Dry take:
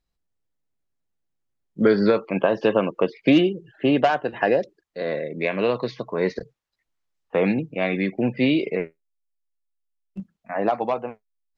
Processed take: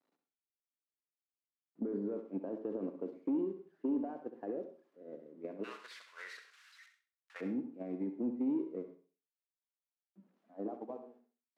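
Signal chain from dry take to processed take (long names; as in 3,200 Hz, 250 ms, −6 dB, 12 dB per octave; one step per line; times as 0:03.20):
spike at every zero crossing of −16.5 dBFS
noise gate −21 dBFS, range −18 dB
brickwall limiter −17.5 dBFS, peak gain reduction 11.5 dB
downward compressor, threshold −27 dBFS, peak gain reduction 6 dB
four-pole ladder band-pass 320 Hz, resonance 55%, from 0:05.63 1,700 Hz, from 0:07.40 310 Hz
soft clipping −28.5 dBFS, distortion −24 dB
flutter between parallel walls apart 11.3 metres, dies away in 0.38 s
reverb whose tail is shaped and stops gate 130 ms rising, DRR 12 dB
level +3.5 dB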